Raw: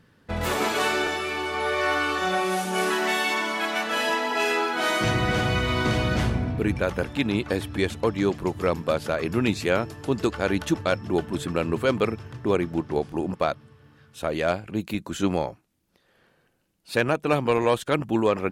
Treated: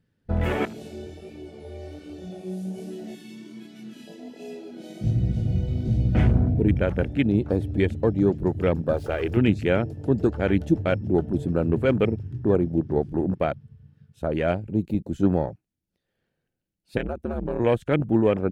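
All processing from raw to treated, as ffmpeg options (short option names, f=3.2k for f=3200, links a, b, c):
-filter_complex "[0:a]asettb=1/sr,asplit=3[a][b][c];[a]atrim=end=0.654[d];[b]atrim=start=0.65:end=6.15,asetpts=PTS-STARTPTS,afade=t=in:d=0.004:c=qsin,afade=t=out:st=5.496:d=0.004:c=qsin,acrossover=split=250|3000[e][f][g];[f]acompressor=threshold=-36dB:ratio=8:attack=3.2:release=140:knee=2.83:detection=peak[h];[e][h][g]amix=inputs=3:normalize=0,flanger=delay=16.5:depth=5.7:speed=1.3[i];[c]atrim=start=6.146[j];[d][i]acrossfade=d=0.004:c1=hsin:c2=qsin[k];[k][j]acrossfade=d=0.004:c1=qsin:c2=hsin,asettb=1/sr,asplit=3[l][m][n];[l]atrim=end=8.934[o];[m]atrim=start=8.93:end=9.37,asetpts=PTS-STARTPTS,afade=t=in:d=0.004:c=qsin,afade=t=out:st=0.436:d=0.004:c=qsin,aeval=exprs='val(0)+0.5*0.0211*sgn(val(0))':c=same,equalizer=f=190:t=o:w=0.99:g=-13.5,aecho=1:1:2.5:0.32,atrim=end_sample=19404[p];[n]atrim=start=9.366[q];[o][p]acrossfade=d=0.004:c1=hsin:c2=qsin[r];[r][q]acrossfade=d=0.004:c1=qsin:c2=hsin,asettb=1/sr,asplit=3[s][t][u];[s]atrim=end=16.974[v];[t]atrim=start=16.97:end=17.6,asetpts=PTS-STARTPTS,afade=t=in:d=0.004:c=qsin,afade=t=out:st=0.626:d=0.004:c=qsin,aeval=exprs='val(0)*sin(2*PI*77*n/s)':c=same,acompressor=threshold=-33dB:ratio=1.5:attack=3.2:release=140:knee=1:detection=peak[w];[u]atrim=start=17.596[x];[v][w]acrossfade=d=0.004:c1=hsin:c2=qsin[y];[y][x]acrossfade=d=0.004:c1=qsin:c2=hsin,lowshelf=f=240:g=8,afwtdn=0.0282,equalizer=f=1.1k:w=2.4:g=-8.5"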